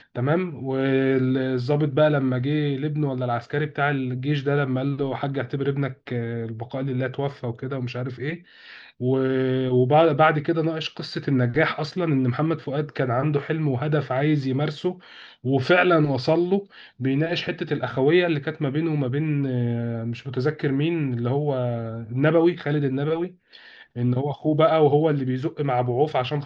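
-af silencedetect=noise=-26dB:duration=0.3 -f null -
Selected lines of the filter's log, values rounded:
silence_start: 8.35
silence_end: 9.01 | silence_duration: 0.67
silence_start: 14.92
silence_end: 15.45 | silence_duration: 0.54
silence_start: 16.59
silence_end: 17.01 | silence_duration: 0.42
silence_start: 23.26
silence_end: 23.97 | silence_duration: 0.71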